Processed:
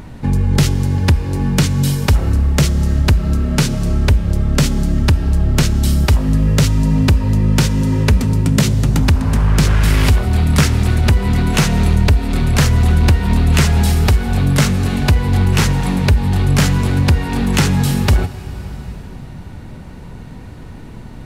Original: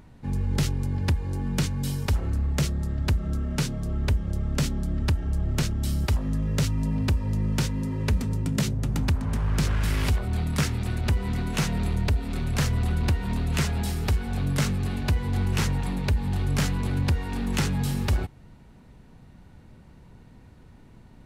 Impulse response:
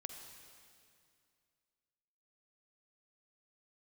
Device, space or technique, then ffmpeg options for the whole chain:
ducked reverb: -filter_complex "[0:a]asplit=3[a][b][c];[1:a]atrim=start_sample=2205[d];[b][d]afir=irnorm=-1:irlink=0[e];[c]apad=whole_len=937277[f];[e][f]sidechaincompress=threshold=-32dB:ratio=8:attack=16:release=794,volume=8.5dB[g];[a][g]amix=inputs=2:normalize=0,volume=8.5dB"

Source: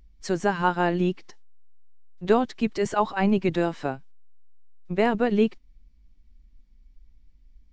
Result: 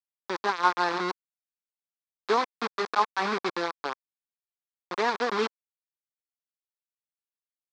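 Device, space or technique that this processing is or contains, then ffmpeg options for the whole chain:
hand-held game console: -af "acrusher=bits=3:mix=0:aa=0.000001,highpass=500,equalizer=f=620:t=q:w=4:g=-10,equalizer=f=1.1k:t=q:w=4:g=6,equalizer=f=2k:t=q:w=4:g=-3,equalizer=f=2.9k:t=q:w=4:g=-10,lowpass=f=4.6k:w=0.5412,lowpass=f=4.6k:w=1.3066"

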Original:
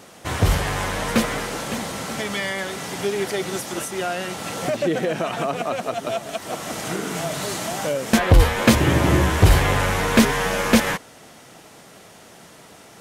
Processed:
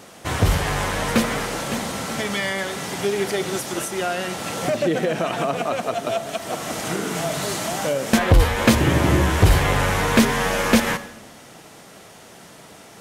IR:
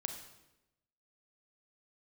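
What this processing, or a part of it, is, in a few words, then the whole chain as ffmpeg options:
compressed reverb return: -filter_complex "[0:a]asplit=2[a][b];[1:a]atrim=start_sample=2205[c];[b][c]afir=irnorm=-1:irlink=0,acompressor=threshold=-18dB:ratio=6,volume=-2.5dB[d];[a][d]amix=inputs=2:normalize=0,volume=-3dB"

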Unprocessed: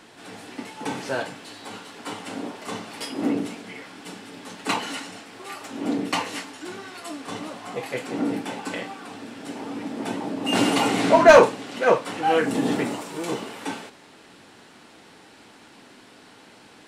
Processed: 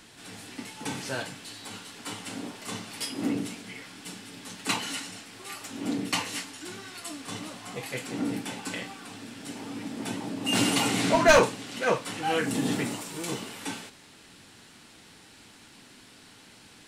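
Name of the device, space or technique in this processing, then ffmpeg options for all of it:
smiley-face EQ: -af "lowshelf=f=130:g=6,equalizer=f=580:t=o:w=3:g=-8.5,highshelf=f=6.4k:g=5"

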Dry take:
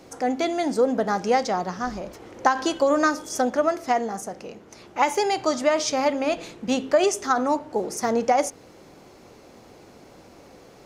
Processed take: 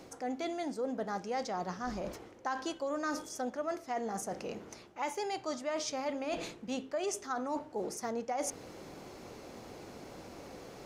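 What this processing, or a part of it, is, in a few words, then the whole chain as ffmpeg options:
compression on the reversed sound: -af "areverse,acompressor=threshold=-36dB:ratio=4,areverse"

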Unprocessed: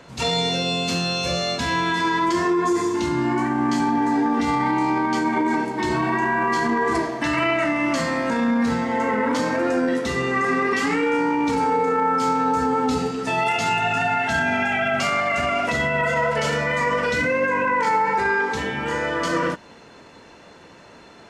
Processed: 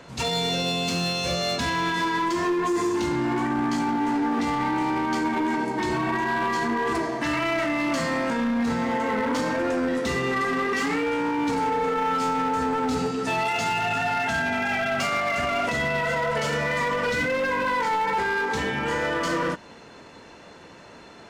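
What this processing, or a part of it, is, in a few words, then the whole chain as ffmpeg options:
limiter into clipper: -af "alimiter=limit=-15dB:level=0:latency=1:release=151,asoftclip=type=hard:threshold=-20.5dB"

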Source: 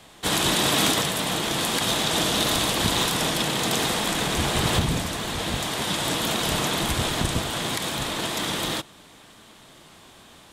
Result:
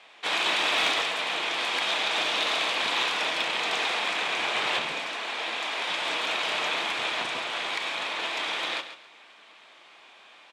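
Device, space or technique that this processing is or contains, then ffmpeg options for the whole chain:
megaphone: -filter_complex "[0:a]highpass=620,lowpass=3.9k,equalizer=f=2.4k:t=o:w=0.36:g=8,asoftclip=type=hard:threshold=-15dB,asplit=2[a][b];[b]adelay=33,volume=-12dB[c];[a][c]amix=inputs=2:normalize=0,asettb=1/sr,asplit=3[d][e][f];[d]atrim=end=4.924[g];[e]atrim=start=4.92:end=5.9,asetpts=PTS-STARTPTS,afade=t=in:d=0.004:c=qsin,afade=t=out:st=0.976:d=0.004:c=qsin,highpass=f=200:w=0.5412,highpass=f=200:w=1.3066[h];[f]atrim=start=5.896[i];[g][h]acrossfade=d=0.004:c1=hsin:c2=qsin[j];[j][i]acrossfade=d=0.004:c1=qsin:c2=hsin,aecho=1:1:136|272|408:0.266|0.0639|0.0153,volume=-2dB"

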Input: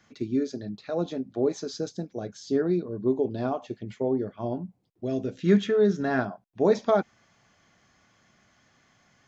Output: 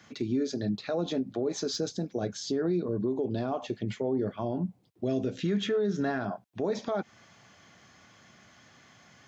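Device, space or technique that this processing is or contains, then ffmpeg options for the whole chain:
broadcast voice chain: -af "highpass=f=70:w=0.5412,highpass=f=70:w=1.3066,deesser=0.85,acompressor=threshold=-26dB:ratio=3,equalizer=f=3.4k:t=o:w=0.77:g=2,alimiter=level_in=3dB:limit=-24dB:level=0:latency=1:release=72,volume=-3dB,volume=6dB"

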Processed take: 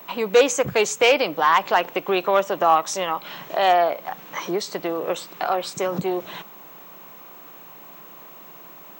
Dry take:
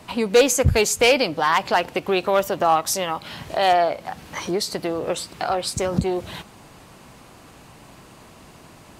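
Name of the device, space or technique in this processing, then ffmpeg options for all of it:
old television with a line whistle: -af "highpass=f=180:w=0.5412,highpass=f=180:w=1.3066,equalizer=f=240:t=q:w=4:g=-9,equalizer=f=1.1k:t=q:w=4:g=4,equalizer=f=4.7k:t=q:w=4:g=-9,lowpass=f=6.9k:w=0.5412,lowpass=f=6.9k:w=1.3066,aeval=exprs='val(0)+0.00794*sin(2*PI*15734*n/s)':c=same"

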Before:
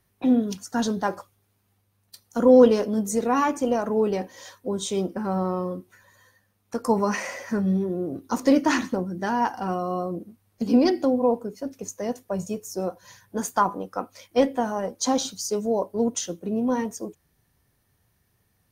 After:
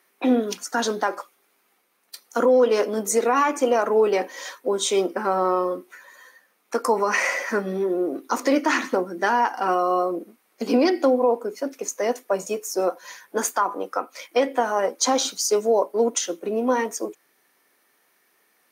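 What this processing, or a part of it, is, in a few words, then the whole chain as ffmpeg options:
laptop speaker: -af "highpass=f=300:w=0.5412,highpass=f=300:w=1.3066,equalizer=f=1.3k:t=o:w=0.55:g=4.5,equalizer=f=2.2k:t=o:w=0.53:g=6,alimiter=limit=-16.5dB:level=0:latency=1:release=212,volume=6.5dB"

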